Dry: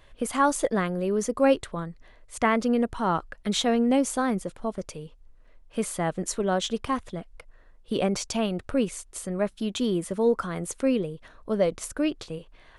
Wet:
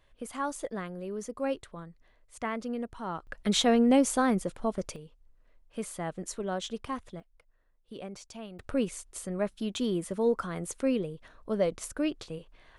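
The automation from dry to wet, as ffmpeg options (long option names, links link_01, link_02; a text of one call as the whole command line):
ffmpeg -i in.wav -af "asetnsamples=nb_out_samples=441:pad=0,asendcmd='3.27 volume volume 0dB;4.96 volume volume -8dB;7.2 volume volume -16.5dB;8.59 volume volume -4dB',volume=-11dB" out.wav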